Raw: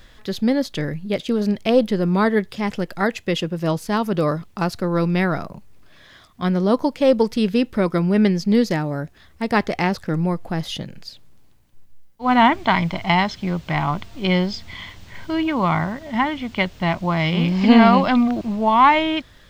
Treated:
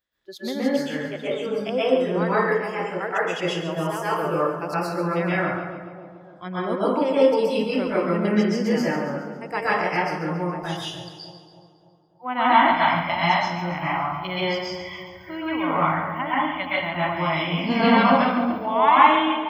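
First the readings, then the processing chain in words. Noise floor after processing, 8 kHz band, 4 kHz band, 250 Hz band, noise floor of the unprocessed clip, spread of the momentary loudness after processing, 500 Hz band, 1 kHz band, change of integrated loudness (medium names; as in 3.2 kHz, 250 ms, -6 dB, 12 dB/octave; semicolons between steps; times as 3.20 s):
-49 dBFS, no reading, -2.0 dB, -6.0 dB, -50 dBFS, 15 LU, -1.0 dB, 0.0 dB, -2.5 dB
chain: high-pass 290 Hz 6 dB/octave; spectral noise reduction 25 dB; two-band feedback delay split 920 Hz, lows 290 ms, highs 138 ms, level -10.5 dB; plate-style reverb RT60 0.67 s, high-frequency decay 0.6×, pre-delay 110 ms, DRR -8.5 dB; trim -9 dB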